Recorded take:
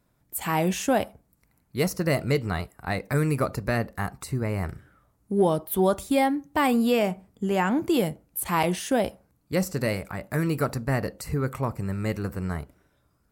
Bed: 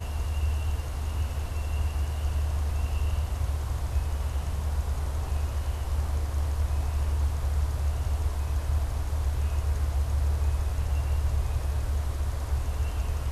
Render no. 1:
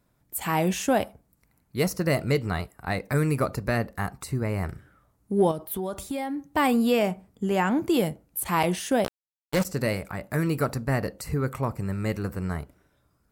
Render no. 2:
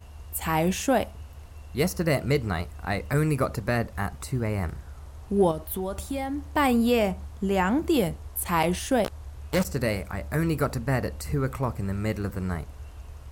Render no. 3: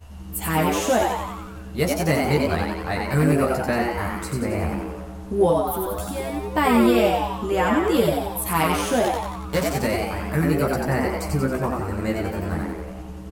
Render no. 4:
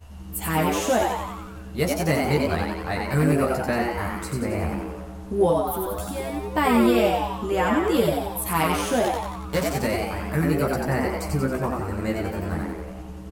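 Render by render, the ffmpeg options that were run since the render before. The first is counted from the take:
ffmpeg -i in.wav -filter_complex "[0:a]asettb=1/sr,asplit=3[link_01][link_02][link_03];[link_01]atrim=end=5.514[link_04];[link_02]atrim=start=5.51:end=6.5,asetpts=PTS-STARTPTS,afade=type=in:duration=0.004:curve=qsin,afade=type=out:start_time=0.986:duration=0.004:curve=qsin,acompressor=threshold=-27dB:ratio=6:attack=3.2:release=140:knee=1:detection=peak[link_05];[link_03]atrim=start=6.496[link_06];[link_04][link_05]acrossfade=duration=0.004:curve1=hsin:curve2=qsin[link_07];[link_07][link_06]acrossfade=duration=0.004:curve1=qsin:curve2=hsin,asettb=1/sr,asplit=3[link_08][link_09][link_10];[link_08]atrim=end=9.044[link_11];[link_09]atrim=start=9.04:end=9.65,asetpts=PTS-STARTPTS,afade=type=in:duration=0.004:curve=qsin,afade=type=out:start_time=0.606:duration=0.004:curve=qsin,acrusher=bits=3:mix=0:aa=0.5[link_12];[link_10]atrim=start=9.646[link_13];[link_11][link_12]acrossfade=duration=0.004:curve1=hsin:curve2=qsin[link_14];[link_14][link_13]acrossfade=duration=0.004:curve1=qsin:curve2=hsin" out.wav
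ffmpeg -i in.wav -i bed.wav -filter_complex "[1:a]volume=-13dB[link_01];[0:a][link_01]amix=inputs=2:normalize=0" out.wav
ffmpeg -i in.wav -filter_complex "[0:a]asplit=2[link_01][link_02];[link_02]adelay=13,volume=-3dB[link_03];[link_01][link_03]amix=inputs=2:normalize=0,asplit=9[link_04][link_05][link_06][link_07][link_08][link_09][link_10][link_11][link_12];[link_05]adelay=91,afreqshift=120,volume=-3dB[link_13];[link_06]adelay=182,afreqshift=240,volume=-7.9dB[link_14];[link_07]adelay=273,afreqshift=360,volume=-12.8dB[link_15];[link_08]adelay=364,afreqshift=480,volume=-17.6dB[link_16];[link_09]adelay=455,afreqshift=600,volume=-22.5dB[link_17];[link_10]adelay=546,afreqshift=720,volume=-27.4dB[link_18];[link_11]adelay=637,afreqshift=840,volume=-32.3dB[link_19];[link_12]adelay=728,afreqshift=960,volume=-37.2dB[link_20];[link_04][link_13][link_14][link_15][link_16][link_17][link_18][link_19][link_20]amix=inputs=9:normalize=0" out.wav
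ffmpeg -i in.wav -af "volume=-1.5dB" out.wav

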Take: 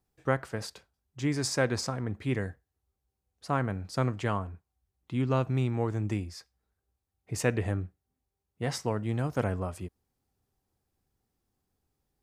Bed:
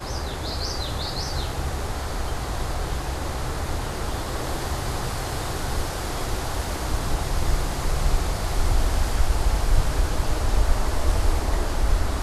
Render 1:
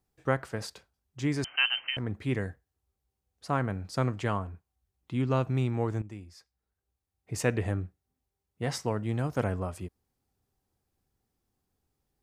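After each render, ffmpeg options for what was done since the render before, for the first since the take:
ffmpeg -i in.wav -filter_complex "[0:a]asettb=1/sr,asplit=3[link_01][link_02][link_03];[link_01]atrim=end=1.444[link_04];[link_02]atrim=start=1.44:end=1.97,asetpts=PTS-STARTPTS,afade=type=in:duration=0.004:curve=qsin,afade=type=out:start_time=0.526:duration=0.004:curve=qsin,lowpass=frequency=2700:width_type=q:width=0.5098,lowpass=frequency=2700:width_type=q:width=0.6013,lowpass=frequency=2700:width_type=q:width=0.9,lowpass=frequency=2700:width_type=q:width=2.563,afreqshift=-3200[link_05];[link_03]atrim=start=1.966[link_06];[link_04][link_05]acrossfade=duration=0.004:curve1=hsin:curve2=qsin[link_07];[link_07][link_06]acrossfade=duration=0.004:curve1=qsin:curve2=hsin,asplit=2[link_08][link_09];[link_08]atrim=end=6.02,asetpts=PTS-STARTPTS,afade=type=out:start_time=6.016:duration=0.004:curve=hsin:silence=0.188365[link_10];[link_09]atrim=start=6.02,asetpts=PTS-STARTPTS,afade=type=in:duration=1.47:silence=0.188365[link_11];[link_10][link_11]concat=n=2:v=0:a=1" out.wav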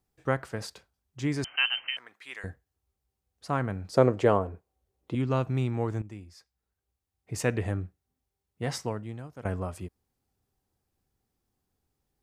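ffmpeg -i in.wav -filter_complex "[0:a]asettb=1/sr,asplit=3[link_01][link_02][link_03];[link_01]atrim=end=1.944[link_04];[link_02]atrim=start=1.94:end=2.44,asetpts=PTS-STARTPTS,afade=type=in:duration=0.004:curve=qsin,afade=type=out:start_time=0.496:duration=0.004:curve=qsin,highpass=1300[link_05];[link_03]atrim=start=2.436[link_06];[link_04][link_05]acrossfade=duration=0.004:curve1=hsin:curve2=qsin[link_07];[link_07][link_06]acrossfade=duration=0.004:curve1=qsin:curve2=hsin,asettb=1/sr,asplit=3[link_08][link_09][link_10];[link_08]atrim=end=3.934[link_11];[link_09]atrim=start=3.93:end=5.15,asetpts=PTS-STARTPTS,afade=type=in:duration=0.004:curve=qsin,afade=type=out:start_time=1.216:duration=0.004:curve=qsin,equalizer=frequency=480:width=1:gain=14.5[link_12];[link_10]atrim=start=5.146[link_13];[link_11][link_12]acrossfade=duration=0.004:curve1=hsin:curve2=qsin[link_14];[link_14][link_13]acrossfade=duration=0.004:curve1=qsin:curve2=hsin,asplit=2[link_15][link_16];[link_15]atrim=end=9.45,asetpts=PTS-STARTPTS,afade=type=out:start_time=8.81:duration=0.64:curve=qua:silence=0.16788[link_17];[link_16]atrim=start=9.45,asetpts=PTS-STARTPTS,afade=type=in:duration=0.004:curve=hsin:silence=0.16788[link_18];[link_17][link_18]concat=n=2:v=0:a=1" out.wav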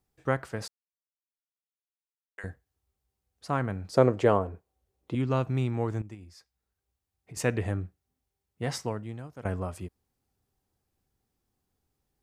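ffmpeg -i in.wav -filter_complex "[0:a]asettb=1/sr,asplit=3[link_01][link_02][link_03];[link_01]atrim=end=6.144[link_04];[link_02]atrim=start=6.14:end=7.37,asetpts=PTS-STARTPTS,afade=type=in:duration=0.004:curve=qsin,afade=type=out:start_time=1.226:duration=0.004:curve=qsin,acompressor=threshold=-41dB:ratio=6:attack=3.2:release=140:knee=1:detection=peak[link_05];[link_03]atrim=start=7.366[link_06];[link_04][link_05]acrossfade=duration=0.004:curve1=hsin:curve2=qsin[link_07];[link_07][link_06]acrossfade=duration=0.004:curve1=qsin:curve2=hsin,asplit=3[link_08][link_09][link_10];[link_08]atrim=end=0.68,asetpts=PTS-STARTPTS,afade=type=out:start_time=0.676:duration=0.004:curve=hsin[link_11];[link_09]atrim=start=0.68:end=2.38,asetpts=PTS-STARTPTS,volume=0[link_12];[link_10]atrim=start=2.38,asetpts=PTS-STARTPTS,afade=type=in:duration=0.004:curve=hsin[link_13];[link_11][link_12][link_13]concat=n=3:v=0:a=1" out.wav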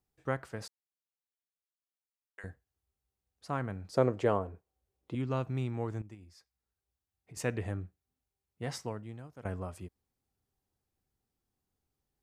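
ffmpeg -i in.wav -af "volume=-6dB" out.wav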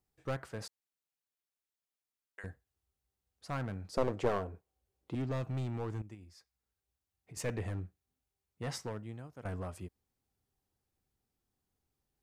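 ffmpeg -i in.wav -af "aeval=exprs='clip(val(0),-1,0.0251)':channel_layout=same" out.wav

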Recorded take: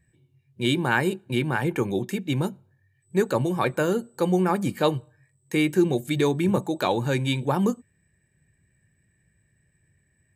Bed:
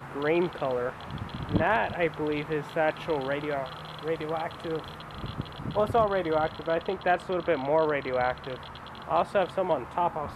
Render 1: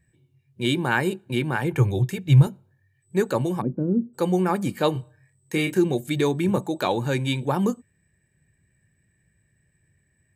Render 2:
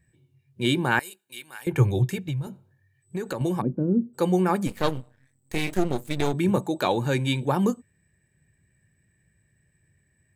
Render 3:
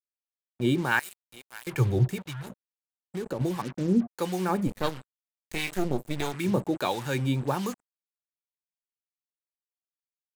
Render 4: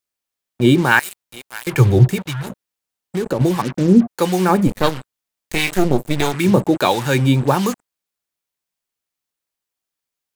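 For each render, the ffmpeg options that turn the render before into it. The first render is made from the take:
ffmpeg -i in.wav -filter_complex "[0:a]asettb=1/sr,asplit=3[link_01][link_02][link_03];[link_01]atrim=end=1.724[link_04];[link_02]atrim=start=1.72:end=2.47,asetpts=PTS-STARTPTS,afade=type=in:duration=0.004:curve=qsin,afade=type=out:start_time=0.746:duration=0.004:curve=qsin,lowshelf=frequency=170:width_type=q:width=3:gain=8.5[link_05];[link_03]atrim=start=2.466[link_06];[link_04][link_05]acrossfade=duration=0.004:curve1=hsin:curve2=qsin[link_07];[link_07][link_06]acrossfade=duration=0.004:curve1=qsin:curve2=hsin,asplit=3[link_08][link_09][link_10];[link_08]afade=type=out:start_time=3.6:duration=0.02[link_11];[link_09]lowpass=frequency=250:width_type=q:width=2.6,afade=type=in:start_time=3.6:duration=0.02,afade=type=out:start_time=4.13:duration=0.02[link_12];[link_10]afade=type=in:start_time=4.13:duration=0.02[link_13];[link_11][link_12][link_13]amix=inputs=3:normalize=0,asettb=1/sr,asplit=3[link_14][link_15][link_16];[link_14]atrim=end=4.924[link_17];[link_15]atrim=start=4.92:end=5.79,asetpts=PTS-STARTPTS,afade=type=in:duration=0.004:curve=qsin,afade=type=out:start_time=0.866:duration=0.004:curve=qsin,asplit=2[link_18][link_19];[link_19]adelay=31,volume=-6dB[link_20];[link_18][link_20]amix=inputs=2:normalize=0,atrim=end_sample=38367[link_21];[link_16]atrim=start=5.786[link_22];[link_17][link_21]acrossfade=duration=0.004:curve1=hsin:curve2=qsin[link_23];[link_23][link_22]acrossfade=duration=0.004:curve1=qsin:curve2=hsin" out.wav
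ffmpeg -i in.wav -filter_complex "[0:a]asettb=1/sr,asplit=3[link_01][link_02][link_03];[link_01]atrim=end=0.994[link_04];[link_02]atrim=start=0.99:end=1.67,asetpts=PTS-STARTPTS,afade=type=in:duration=0.004:curve=qsin,afade=type=out:start_time=0.676:duration=0.004:curve=qsin,aderivative[link_05];[link_03]atrim=start=1.666[link_06];[link_04][link_05]acrossfade=duration=0.004:curve1=hsin:curve2=qsin[link_07];[link_07][link_06]acrossfade=duration=0.004:curve1=qsin:curve2=hsin,asettb=1/sr,asplit=3[link_08][link_09][link_10];[link_08]atrim=end=2.264[link_11];[link_09]atrim=start=2.26:end=3.41,asetpts=PTS-STARTPTS,afade=type=in:duration=0.004:curve=qsin,afade=type=out:start_time=1.146:duration=0.004:curve=qsin,acompressor=threshold=-25dB:ratio=16:attack=3.2:release=140:knee=1:detection=peak[link_12];[link_10]atrim=start=3.406[link_13];[link_11][link_12]acrossfade=duration=0.004:curve1=hsin:curve2=qsin[link_14];[link_14][link_13]acrossfade=duration=0.004:curve1=qsin:curve2=hsin,asplit=3[link_15][link_16][link_17];[link_15]afade=type=out:start_time=4.66:duration=0.02[link_18];[link_16]aeval=exprs='max(val(0),0)':channel_layout=same,afade=type=in:start_time=4.66:duration=0.02,afade=type=out:start_time=6.32:duration=0.02[link_19];[link_17]afade=type=in:start_time=6.32:duration=0.02[link_20];[link_18][link_19][link_20]amix=inputs=3:normalize=0" out.wav
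ffmpeg -i in.wav -filter_complex "[0:a]acrusher=bits=5:mix=0:aa=0.5,acrossover=split=870[link_01][link_02];[link_01]aeval=exprs='val(0)*(1-0.7/2+0.7/2*cos(2*PI*1.5*n/s))':channel_layout=same[link_03];[link_02]aeval=exprs='val(0)*(1-0.7/2-0.7/2*cos(2*PI*1.5*n/s))':channel_layout=same[link_04];[link_03][link_04]amix=inputs=2:normalize=0" out.wav
ffmpeg -i in.wav -af "volume=12dB,alimiter=limit=-1dB:level=0:latency=1" out.wav

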